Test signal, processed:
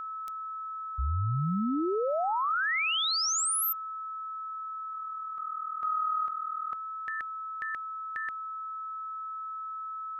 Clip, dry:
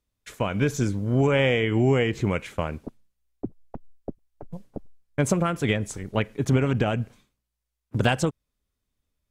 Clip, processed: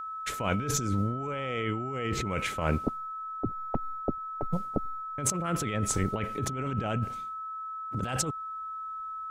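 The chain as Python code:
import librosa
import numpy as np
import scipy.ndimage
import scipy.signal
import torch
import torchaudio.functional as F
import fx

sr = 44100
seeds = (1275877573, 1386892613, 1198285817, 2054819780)

y = fx.over_compress(x, sr, threshold_db=-31.0, ratio=-1.0)
y = y + 10.0 ** (-35.0 / 20.0) * np.sin(2.0 * np.pi * 1300.0 * np.arange(len(y)) / sr)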